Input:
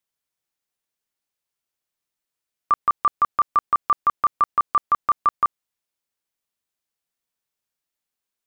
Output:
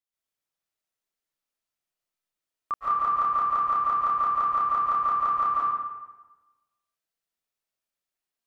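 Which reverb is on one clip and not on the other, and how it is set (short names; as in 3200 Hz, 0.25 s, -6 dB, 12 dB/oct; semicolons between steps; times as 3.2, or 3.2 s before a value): digital reverb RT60 1.2 s, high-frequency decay 0.7×, pre-delay 0.1 s, DRR -8 dB; gain -11 dB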